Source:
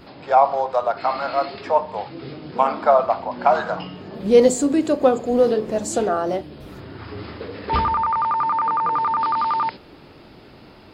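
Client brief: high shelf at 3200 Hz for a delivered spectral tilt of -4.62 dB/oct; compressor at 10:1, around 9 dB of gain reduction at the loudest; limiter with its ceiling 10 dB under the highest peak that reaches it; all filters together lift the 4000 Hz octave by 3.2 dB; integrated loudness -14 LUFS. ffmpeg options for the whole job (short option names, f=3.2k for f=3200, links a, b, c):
-af "highshelf=f=3.2k:g=-3.5,equalizer=f=4k:t=o:g=6.5,acompressor=threshold=-18dB:ratio=10,volume=12dB,alimiter=limit=-5dB:level=0:latency=1"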